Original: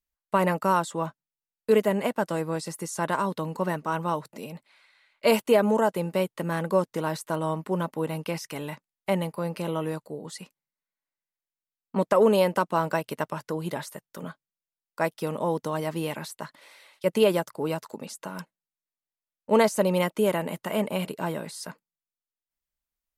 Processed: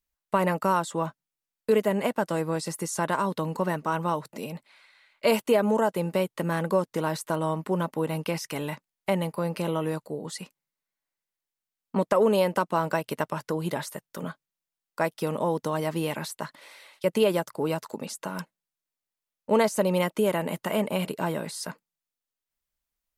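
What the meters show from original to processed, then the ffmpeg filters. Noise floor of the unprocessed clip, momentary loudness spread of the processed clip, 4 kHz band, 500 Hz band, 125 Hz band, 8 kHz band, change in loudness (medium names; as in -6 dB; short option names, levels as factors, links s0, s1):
under -85 dBFS, 13 LU, 0.0 dB, -1.0 dB, +0.5 dB, +1.5 dB, -1.0 dB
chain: -af "acompressor=threshold=0.0355:ratio=1.5,volume=1.41"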